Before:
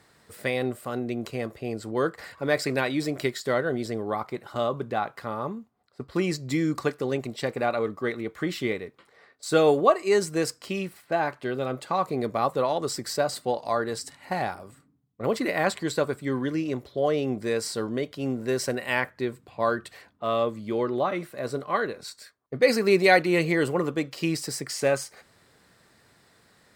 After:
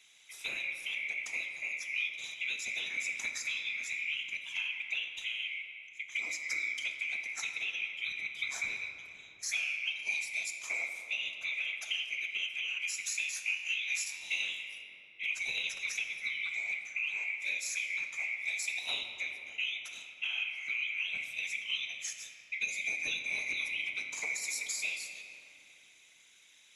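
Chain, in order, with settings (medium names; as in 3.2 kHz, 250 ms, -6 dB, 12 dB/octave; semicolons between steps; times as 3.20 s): split-band scrambler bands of 2 kHz; low-pass 9.3 kHz 24 dB/octave; tilt EQ +3.5 dB/octave; compression 12:1, threshold -25 dBFS, peak gain reduction 18 dB; whisper effect; 13.22–14.59 s: doubling 21 ms -2.5 dB; on a send: reverberation RT60 3.3 s, pre-delay 4 ms, DRR 4 dB; on the sum: trim -8 dB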